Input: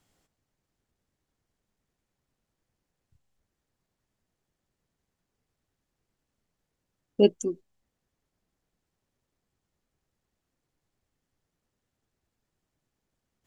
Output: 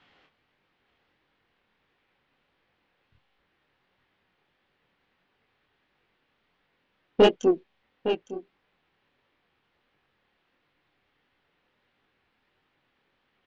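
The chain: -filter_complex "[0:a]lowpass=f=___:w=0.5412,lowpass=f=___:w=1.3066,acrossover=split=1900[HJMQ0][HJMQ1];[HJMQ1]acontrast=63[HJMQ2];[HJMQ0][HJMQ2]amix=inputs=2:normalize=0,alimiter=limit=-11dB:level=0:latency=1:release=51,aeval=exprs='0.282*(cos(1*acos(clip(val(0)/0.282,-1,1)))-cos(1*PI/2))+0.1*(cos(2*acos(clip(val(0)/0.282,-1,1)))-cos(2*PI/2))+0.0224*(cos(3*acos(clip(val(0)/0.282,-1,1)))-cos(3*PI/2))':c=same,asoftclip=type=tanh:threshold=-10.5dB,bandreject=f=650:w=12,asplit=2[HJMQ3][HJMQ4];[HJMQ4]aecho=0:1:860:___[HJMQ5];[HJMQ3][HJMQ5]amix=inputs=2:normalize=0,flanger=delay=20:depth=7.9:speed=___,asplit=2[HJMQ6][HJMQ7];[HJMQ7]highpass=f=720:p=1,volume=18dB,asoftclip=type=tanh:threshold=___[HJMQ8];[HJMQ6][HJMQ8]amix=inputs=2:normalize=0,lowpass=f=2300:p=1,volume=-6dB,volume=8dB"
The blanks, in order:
3600, 3600, 0.2, 1.5, -14.5dB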